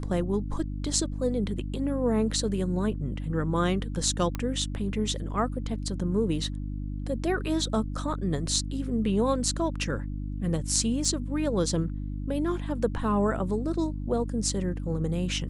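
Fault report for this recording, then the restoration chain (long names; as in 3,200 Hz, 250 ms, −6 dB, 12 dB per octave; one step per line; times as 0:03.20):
mains hum 50 Hz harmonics 6 −33 dBFS
0:04.35: click −17 dBFS
0:11.05: drop-out 2.9 ms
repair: click removal
hum removal 50 Hz, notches 6
repair the gap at 0:11.05, 2.9 ms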